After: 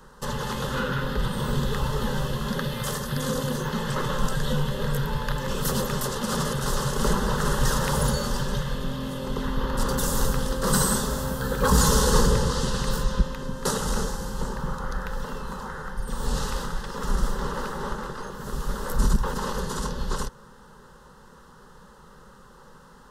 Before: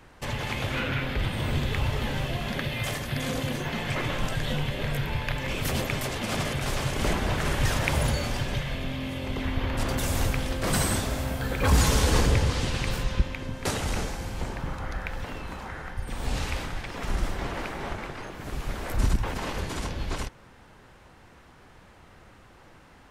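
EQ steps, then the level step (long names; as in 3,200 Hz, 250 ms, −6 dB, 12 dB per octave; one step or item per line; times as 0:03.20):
phaser with its sweep stopped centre 460 Hz, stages 8
+6.0 dB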